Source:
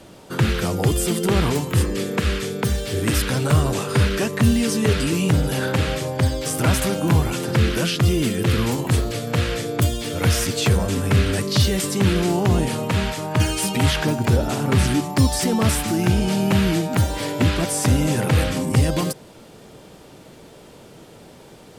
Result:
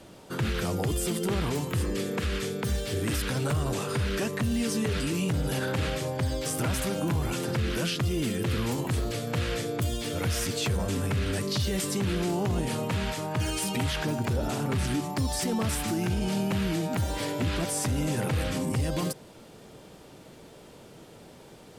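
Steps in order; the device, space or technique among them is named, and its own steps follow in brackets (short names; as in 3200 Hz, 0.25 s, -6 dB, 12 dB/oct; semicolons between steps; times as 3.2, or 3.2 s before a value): soft clipper into limiter (soft clip -7.5 dBFS, distortion -24 dB; limiter -15.5 dBFS, peak gain reduction 6.5 dB); gain -5 dB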